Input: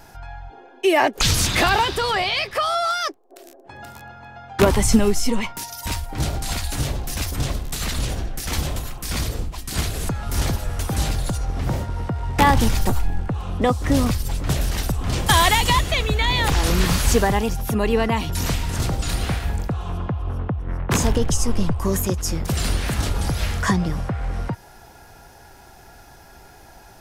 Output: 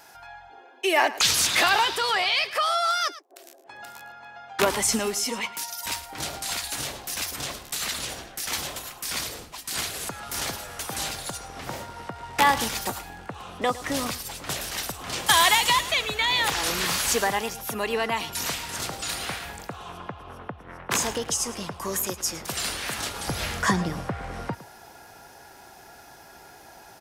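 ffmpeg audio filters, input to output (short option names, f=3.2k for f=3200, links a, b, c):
-af "asetnsamples=n=441:p=0,asendcmd='23.28 highpass f 280',highpass=f=940:p=1,aecho=1:1:109:0.15"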